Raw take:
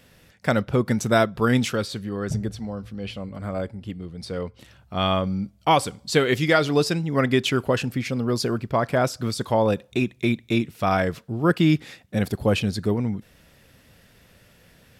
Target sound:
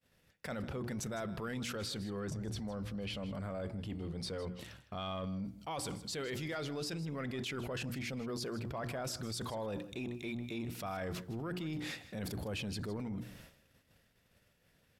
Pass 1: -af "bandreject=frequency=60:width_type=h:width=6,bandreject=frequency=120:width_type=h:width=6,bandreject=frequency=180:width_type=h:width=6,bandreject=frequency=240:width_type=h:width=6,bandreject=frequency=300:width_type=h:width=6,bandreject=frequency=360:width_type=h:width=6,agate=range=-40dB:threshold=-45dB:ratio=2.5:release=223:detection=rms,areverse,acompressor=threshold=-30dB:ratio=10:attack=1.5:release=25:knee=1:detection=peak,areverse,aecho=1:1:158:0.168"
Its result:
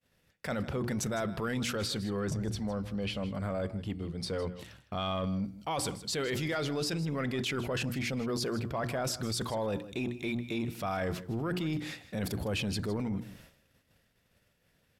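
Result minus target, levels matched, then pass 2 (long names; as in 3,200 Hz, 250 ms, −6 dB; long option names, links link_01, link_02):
downward compressor: peak gain reduction −7 dB
-af "bandreject=frequency=60:width_type=h:width=6,bandreject=frequency=120:width_type=h:width=6,bandreject=frequency=180:width_type=h:width=6,bandreject=frequency=240:width_type=h:width=6,bandreject=frequency=300:width_type=h:width=6,bandreject=frequency=360:width_type=h:width=6,agate=range=-40dB:threshold=-45dB:ratio=2.5:release=223:detection=rms,areverse,acompressor=threshold=-37.5dB:ratio=10:attack=1.5:release=25:knee=1:detection=peak,areverse,aecho=1:1:158:0.168"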